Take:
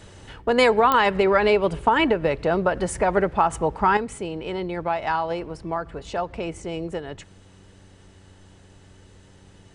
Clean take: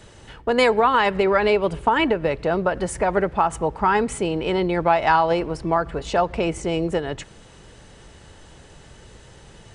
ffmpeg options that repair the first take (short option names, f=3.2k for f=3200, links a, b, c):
-af "adeclick=t=4,bandreject=f=94.6:t=h:w=4,bandreject=f=189.2:t=h:w=4,bandreject=f=283.8:t=h:w=4,bandreject=f=378.4:t=h:w=4,asetnsamples=n=441:p=0,asendcmd='3.97 volume volume 7dB',volume=0dB"